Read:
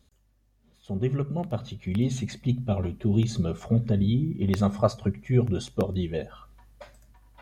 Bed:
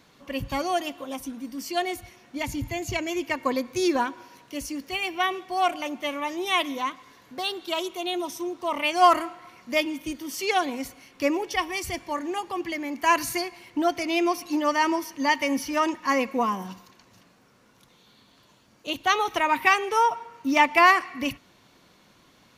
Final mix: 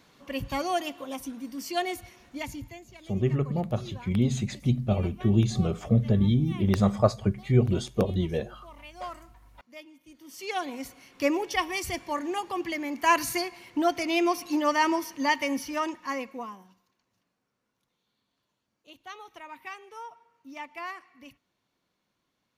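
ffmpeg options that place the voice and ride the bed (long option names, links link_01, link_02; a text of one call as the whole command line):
ffmpeg -i stem1.wav -i stem2.wav -filter_complex "[0:a]adelay=2200,volume=1dB[link_01];[1:a]volume=19dB,afade=type=out:start_time=2.2:duration=0.67:silence=0.1,afade=type=in:start_time=10.07:duration=1.19:silence=0.0891251,afade=type=out:start_time=15.05:duration=1.64:silence=0.1[link_02];[link_01][link_02]amix=inputs=2:normalize=0" out.wav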